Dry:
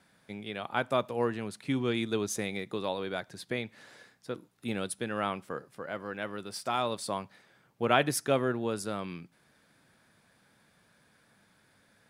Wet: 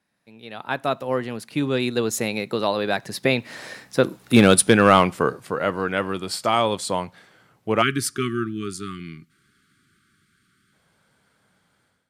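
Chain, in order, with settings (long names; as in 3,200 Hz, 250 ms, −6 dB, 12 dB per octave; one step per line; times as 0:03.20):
source passing by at 0:04.47, 26 m/s, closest 15 metres
time-frequency box erased 0:07.82–0:10.73, 410–1,100 Hz
automatic gain control gain up to 13.5 dB
in parallel at −6.5 dB: wave folding −13 dBFS
on the sum: level +4.5 dB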